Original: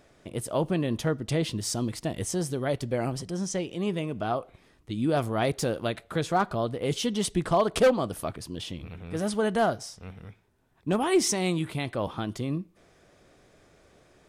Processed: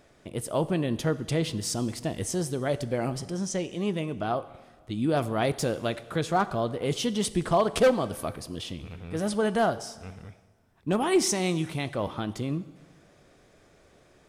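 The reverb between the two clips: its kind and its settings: plate-style reverb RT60 1.5 s, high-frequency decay 0.95×, DRR 14.5 dB

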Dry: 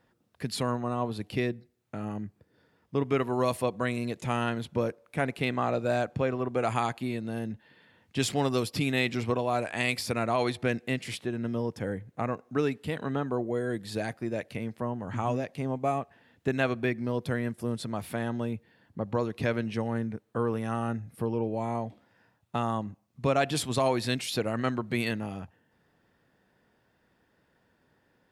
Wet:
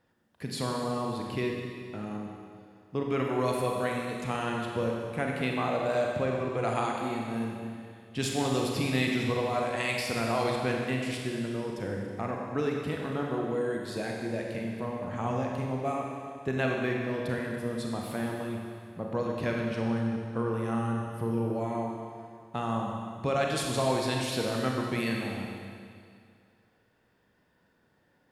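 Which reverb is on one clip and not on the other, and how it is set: Schroeder reverb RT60 2.2 s, combs from 31 ms, DRR -0.5 dB; trim -3.5 dB

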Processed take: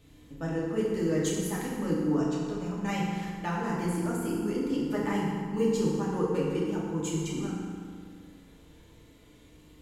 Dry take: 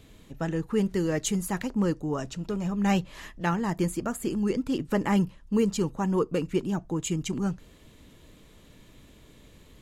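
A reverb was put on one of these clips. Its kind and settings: FDN reverb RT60 2.1 s, low-frequency decay 1.05×, high-frequency decay 0.6×, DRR -6 dB; trim -9 dB

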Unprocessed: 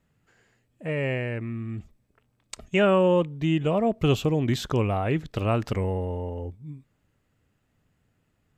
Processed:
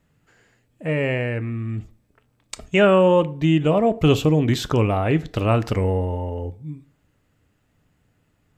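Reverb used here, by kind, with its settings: FDN reverb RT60 0.47 s, low-frequency decay 0.85×, high-frequency decay 0.65×, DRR 12.5 dB; trim +5 dB

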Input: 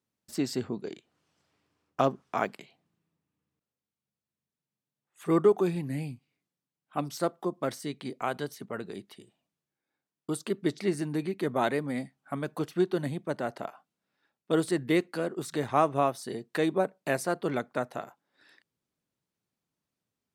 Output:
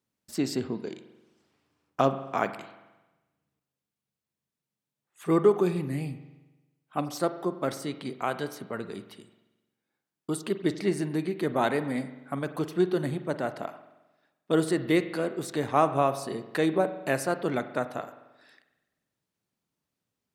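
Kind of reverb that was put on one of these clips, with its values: spring tank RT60 1.1 s, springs 44 ms, chirp 25 ms, DRR 11 dB; trim +1.5 dB

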